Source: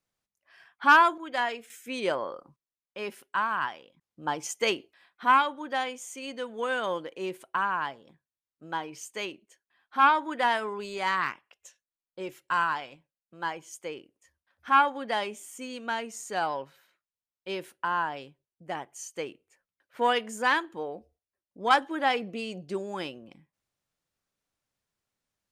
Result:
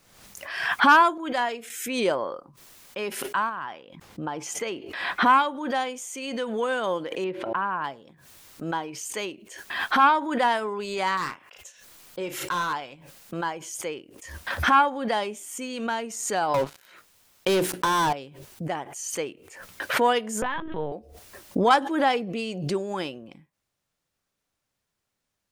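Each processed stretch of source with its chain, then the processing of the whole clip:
0:03.49–0:05.26: high-shelf EQ 4,300 Hz −10.5 dB + downward compressor 4 to 1, threshold −31 dBFS
0:07.24–0:07.84: high-frequency loss of the air 320 metres + hum removal 112.8 Hz, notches 9
0:11.17–0:12.73: gain into a clipping stage and back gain 25 dB + double-tracking delay 34 ms −10 dB
0:16.54–0:18.13: mains-hum notches 60/120/180/240/300/360/420/480 Hz + leveller curve on the samples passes 5 + downward compressor 3 to 1, threshold −25 dBFS
0:20.42–0:20.92: linear-prediction vocoder at 8 kHz pitch kept + downward compressor 4 to 1, threshold −26 dBFS
whole clip: dynamic equaliser 2,100 Hz, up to −5 dB, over −38 dBFS, Q 0.74; background raised ahead of every attack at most 55 dB per second; level +4.5 dB

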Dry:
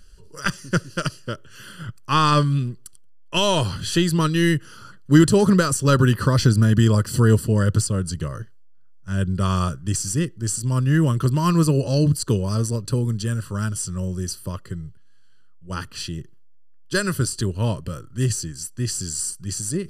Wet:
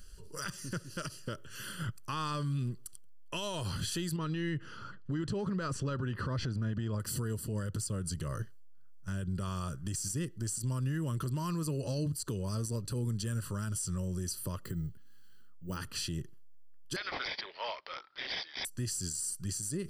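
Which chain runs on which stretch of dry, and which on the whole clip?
0:04.16–0:07.00: low-pass filter 3,300 Hz + downward compressor 2 to 1, threshold −25 dBFS
0:14.63–0:15.77: parametric band 250 Hz +6.5 dB 1 octave + bad sample-rate conversion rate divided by 2×, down none, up hold
0:16.96–0:18.65: high-pass filter 690 Hz 24 dB per octave + parametric band 11,000 Hz +9.5 dB 0.76 octaves + bad sample-rate conversion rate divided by 4×, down none, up filtered
whole clip: high-shelf EQ 9,500 Hz +9 dB; downward compressor 5 to 1, threshold −26 dBFS; brickwall limiter −24 dBFS; level −3 dB

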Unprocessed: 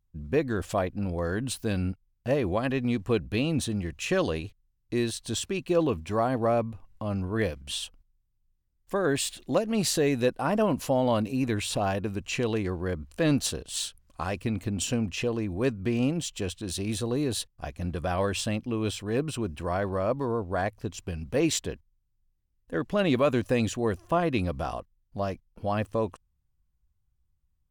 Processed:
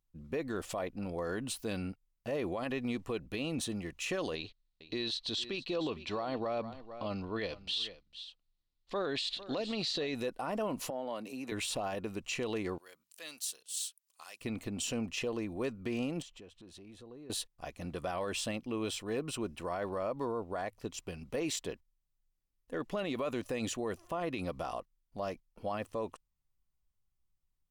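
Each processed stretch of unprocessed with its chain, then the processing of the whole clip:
0:04.35–0:10.15: low-pass with resonance 4,100 Hz, resonance Q 3.8 + single-tap delay 454 ms −18.5 dB
0:10.90–0:11.52: high-pass filter 210 Hz + downward compressor 5 to 1, threshold −30 dBFS + multiband upward and downward expander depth 70%
0:12.78–0:14.41: first difference + mains-hum notches 60/120/180 Hz
0:16.22–0:17.30: low-pass filter 1,500 Hz 6 dB per octave + downward compressor 3 to 1, threshold −47 dBFS
whole clip: parametric band 71 Hz −12.5 dB 2.7 octaves; notch filter 1,600 Hz, Q 11; brickwall limiter −24 dBFS; level −2.5 dB

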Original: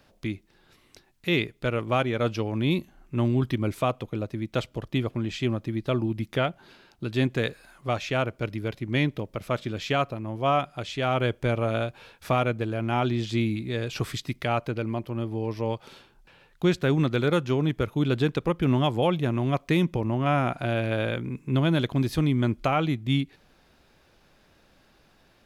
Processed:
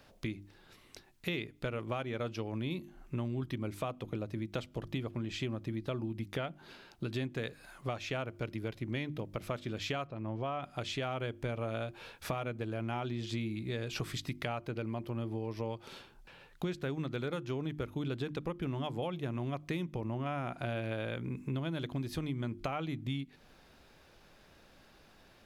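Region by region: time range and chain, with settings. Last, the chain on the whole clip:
0:10.07–0:10.63: downward compressor 1.5 to 1, threshold −32 dBFS + high-frequency loss of the air 120 metres
whole clip: mains-hum notches 50/100/150/200/250/300/350 Hz; downward compressor 6 to 1, threshold −34 dBFS

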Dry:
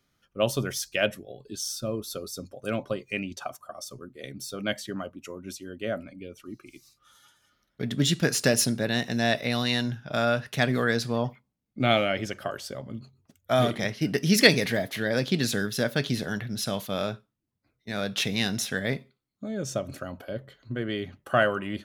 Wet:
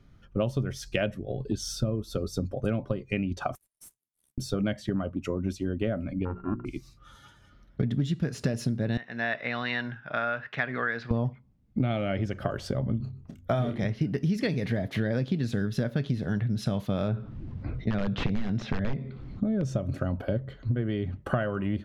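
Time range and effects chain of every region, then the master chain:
0:03.55–0:04.38: inverse Chebyshev high-pass filter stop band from 2,500 Hz, stop band 70 dB + leveller curve on the samples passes 2
0:06.25–0:06.65: samples sorted by size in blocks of 32 samples + low-pass filter 1,500 Hz 24 dB per octave + mains-hum notches 60/120/180/240/300/360/420 Hz
0:08.97–0:11.11: resonant band-pass 1,700 Hz, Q 1.5 + high-frequency loss of the air 74 metres
0:12.97–0:13.82: mains-hum notches 50/100/150/200/250/300/350 Hz + double-tracking delay 29 ms −9 dB
0:17.08–0:19.63: wrap-around overflow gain 20.5 dB + high-frequency loss of the air 180 metres + envelope flattener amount 50%
whole clip: RIAA equalisation playback; downward compressor 10 to 1, threshold −32 dBFS; level +7.5 dB

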